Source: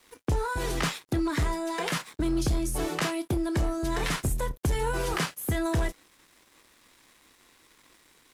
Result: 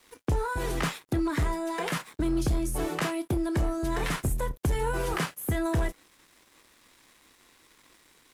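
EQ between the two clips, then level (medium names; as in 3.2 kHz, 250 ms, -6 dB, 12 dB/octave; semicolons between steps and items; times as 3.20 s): dynamic bell 5 kHz, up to -5 dB, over -47 dBFS, Q 0.75; 0.0 dB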